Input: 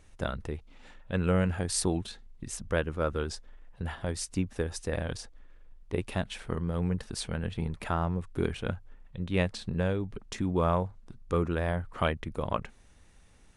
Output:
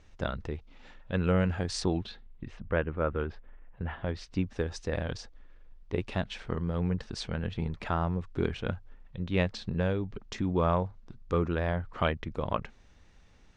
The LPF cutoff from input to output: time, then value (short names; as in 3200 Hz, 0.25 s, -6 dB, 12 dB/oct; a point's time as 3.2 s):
LPF 24 dB/oct
1.74 s 6200 Hz
2.71 s 2600 Hz
3.87 s 2600 Hz
4.52 s 6100 Hz